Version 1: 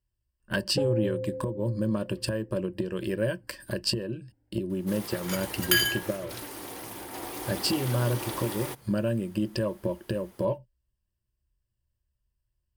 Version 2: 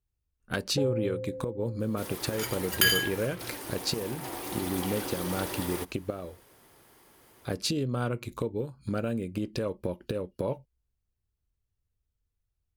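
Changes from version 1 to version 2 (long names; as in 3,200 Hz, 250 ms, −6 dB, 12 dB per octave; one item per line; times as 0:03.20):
speech: remove EQ curve with evenly spaced ripples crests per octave 1.3, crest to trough 13 dB
first sound −3.0 dB
second sound: entry −2.90 s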